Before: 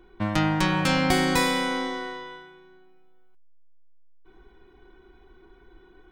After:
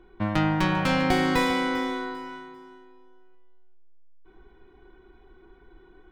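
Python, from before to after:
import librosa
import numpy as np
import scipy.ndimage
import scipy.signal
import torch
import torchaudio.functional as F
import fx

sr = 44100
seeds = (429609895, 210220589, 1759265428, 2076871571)

p1 = fx.tracing_dist(x, sr, depth_ms=0.093)
p2 = fx.high_shelf(p1, sr, hz=5200.0, db=-12.0)
y = p2 + fx.echo_feedback(p2, sr, ms=396, feedback_pct=28, wet_db=-14.0, dry=0)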